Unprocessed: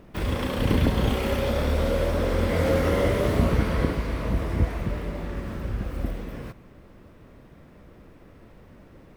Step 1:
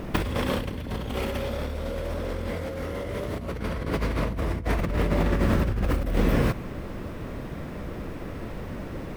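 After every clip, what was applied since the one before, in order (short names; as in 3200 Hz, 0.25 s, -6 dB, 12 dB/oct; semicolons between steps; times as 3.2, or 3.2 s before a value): negative-ratio compressor -34 dBFS, ratio -1; gain +6.5 dB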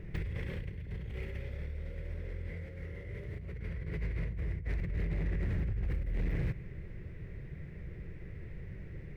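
EQ curve 160 Hz 0 dB, 250 Hz -18 dB, 390 Hz -6 dB, 650 Hz -18 dB, 1200 Hz -21 dB, 2000 Hz -1 dB, 3100 Hz -14 dB, 12000 Hz -21 dB; hard clip -21.5 dBFS, distortion -16 dB; gain -6.5 dB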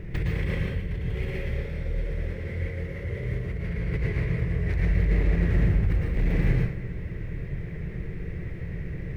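plate-style reverb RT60 0.62 s, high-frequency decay 0.8×, pre-delay 0.1 s, DRR -1.5 dB; gain +7.5 dB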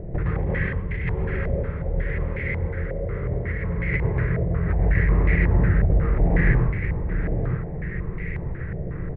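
on a send: echo 0.926 s -5.5 dB; on the sum: stepped low-pass 5.5 Hz 660–2100 Hz; gain +2.5 dB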